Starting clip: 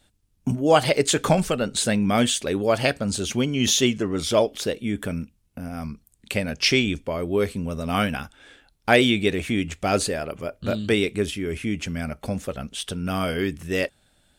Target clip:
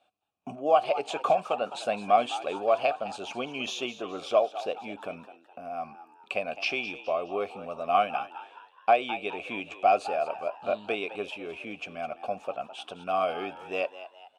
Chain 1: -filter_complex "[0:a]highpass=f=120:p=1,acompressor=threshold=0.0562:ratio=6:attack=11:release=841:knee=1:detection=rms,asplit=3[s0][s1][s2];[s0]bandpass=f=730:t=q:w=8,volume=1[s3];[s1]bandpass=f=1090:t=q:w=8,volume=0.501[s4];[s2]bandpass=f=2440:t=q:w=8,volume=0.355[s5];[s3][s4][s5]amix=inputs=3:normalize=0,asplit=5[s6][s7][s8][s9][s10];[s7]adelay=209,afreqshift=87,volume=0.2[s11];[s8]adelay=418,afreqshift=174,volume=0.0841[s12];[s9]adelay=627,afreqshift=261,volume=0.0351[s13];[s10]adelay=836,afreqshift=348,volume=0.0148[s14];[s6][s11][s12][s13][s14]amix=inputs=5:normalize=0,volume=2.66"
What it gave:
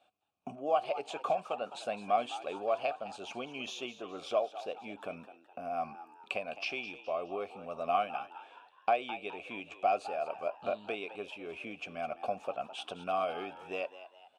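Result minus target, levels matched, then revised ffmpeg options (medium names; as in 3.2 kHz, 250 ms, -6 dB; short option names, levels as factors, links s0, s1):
compression: peak gain reduction +7.5 dB
-filter_complex "[0:a]highpass=f=120:p=1,acompressor=threshold=0.158:ratio=6:attack=11:release=841:knee=1:detection=rms,asplit=3[s0][s1][s2];[s0]bandpass=f=730:t=q:w=8,volume=1[s3];[s1]bandpass=f=1090:t=q:w=8,volume=0.501[s4];[s2]bandpass=f=2440:t=q:w=8,volume=0.355[s5];[s3][s4][s5]amix=inputs=3:normalize=0,asplit=5[s6][s7][s8][s9][s10];[s7]adelay=209,afreqshift=87,volume=0.2[s11];[s8]adelay=418,afreqshift=174,volume=0.0841[s12];[s9]adelay=627,afreqshift=261,volume=0.0351[s13];[s10]adelay=836,afreqshift=348,volume=0.0148[s14];[s6][s11][s12][s13][s14]amix=inputs=5:normalize=0,volume=2.66"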